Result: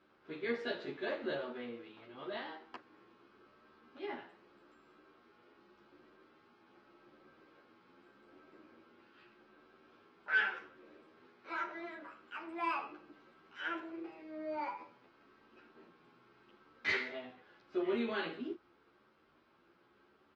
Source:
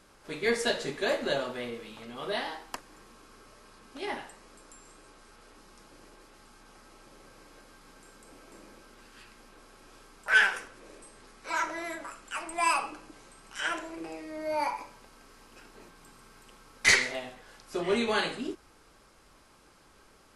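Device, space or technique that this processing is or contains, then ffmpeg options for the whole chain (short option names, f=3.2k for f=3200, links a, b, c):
barber-pole flanger into a guitar amplifier: -filter_complex "[0:a]asplit=2[a][b];[b]adelay=11,afreqshift=0.84[c];[a][c]amix=inputs=2:normalize=1,asoftclip=type=tanh:threshold=-16.5dB,highpass=100,equalizer=f=230:t=q:w=4:g=3,equalizer=f=350:t=q:w=4:g=9,equalizer=f=1.4k:t=q:w=4:g=4,lowpass=f=3.8k:w=0.5412,lowpass=f=3.8k:w=1.3066,volume=-7.5dB"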